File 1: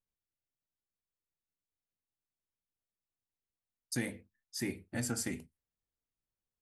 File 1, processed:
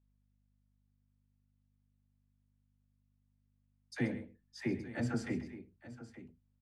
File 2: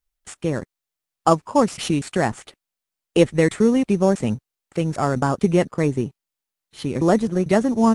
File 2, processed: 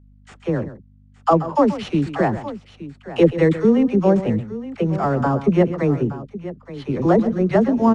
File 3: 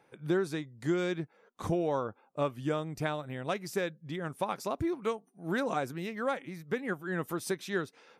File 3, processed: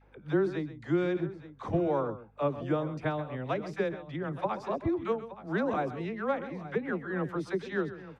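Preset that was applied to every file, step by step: low-pass 4.4 kHz 12 dB/octave; treble shelf 2.6 kHz -9.5 dB; phase dispersion lows, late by 53 ms, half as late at 470 Hz; hum 50 Hz, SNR 30 dB; multi-tap echo 131/872 ms -14/-15 dB; trim +2 dB

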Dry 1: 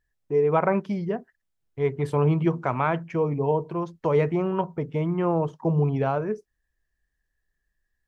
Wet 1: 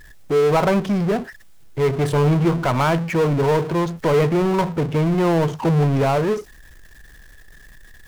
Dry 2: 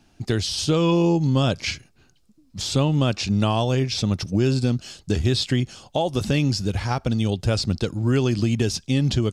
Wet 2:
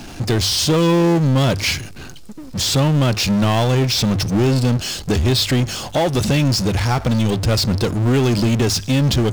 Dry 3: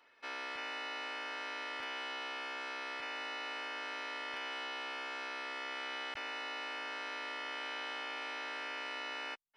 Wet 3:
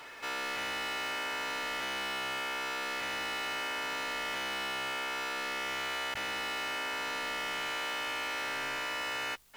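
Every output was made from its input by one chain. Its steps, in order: hum notches 50/100 Hz; power-law waveshaper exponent 0.5

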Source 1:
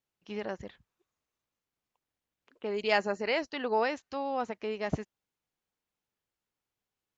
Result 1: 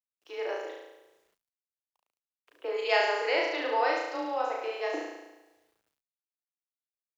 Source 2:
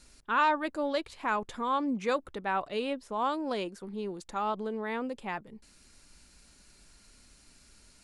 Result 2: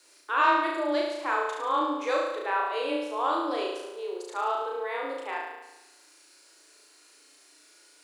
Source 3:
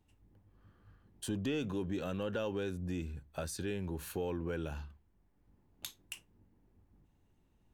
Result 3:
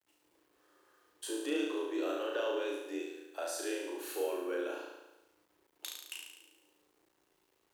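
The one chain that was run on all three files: Chebyshev high-pass 270 Hz, order 8; flutter echo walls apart 6.1 m, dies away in 1 s; two-slope reverb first 0.7 s, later 3 s, from -25 dB, DRR 15.5 dB; word length cut 12-bit, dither none; frequency shift +21 Hz

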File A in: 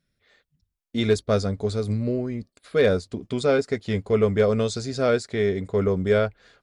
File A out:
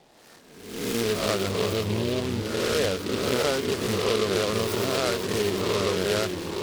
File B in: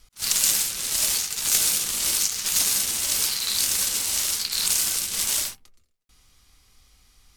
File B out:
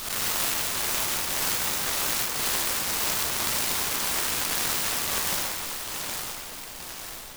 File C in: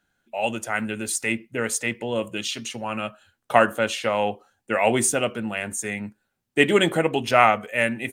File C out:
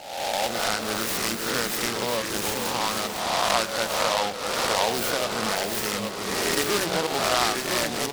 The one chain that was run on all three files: reverse spectral sustain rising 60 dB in 0.86 s; peaking EQ 1.1 kHz +11 dB 1.5 oct; compression 3:1, threshold -26 dBFS; band noise 120–880 Hz -58 dBFS; ever faster or slower copies 177 ms, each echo -2 st, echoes 3, each echo -6 dB; echo whose repeats swap between lows and highs 502 ms, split 860 Hz, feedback 67%, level -14 dB; delay time shaken by noise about 3 kHz, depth 0.11 ms

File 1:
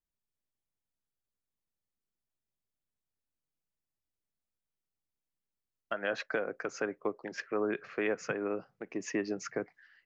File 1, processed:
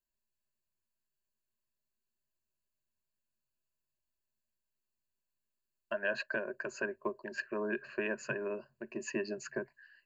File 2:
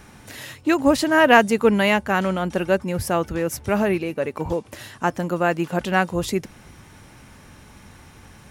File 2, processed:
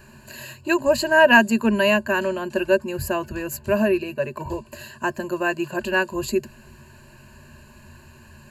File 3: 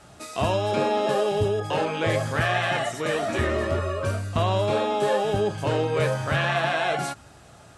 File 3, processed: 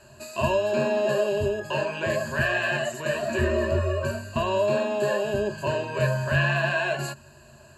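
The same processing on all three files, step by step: rippled EQ curve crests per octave 1.4, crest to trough 18 dB; trim -5 dB

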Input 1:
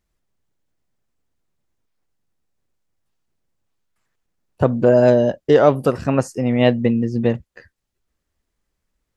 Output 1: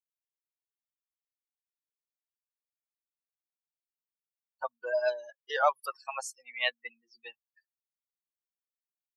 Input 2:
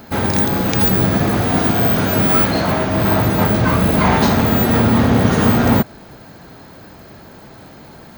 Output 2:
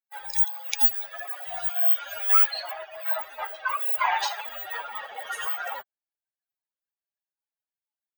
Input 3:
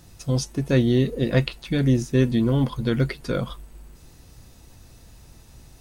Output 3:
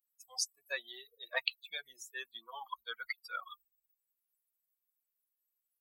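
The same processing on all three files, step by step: expander on every frequency bin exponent 3; inverse Chebyshev high-pass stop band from 300 Hz, stop band 50 dB

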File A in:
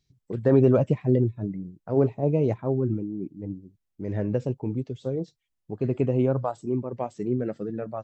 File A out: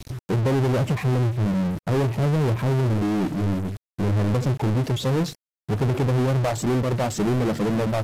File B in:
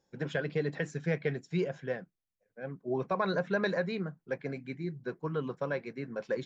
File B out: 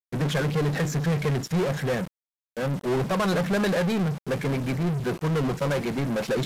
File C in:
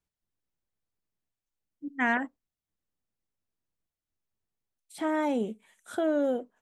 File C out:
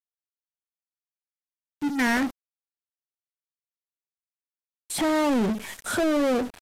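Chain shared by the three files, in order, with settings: bass shelf 200 Hz +10.5 dB; compression 12:1, threshold -21 dBFS; power-law waveshaper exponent 0.35; small samples zeroed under -31.5 dBFS; trim -2 dB; AAC 96 kbps 32 kHz

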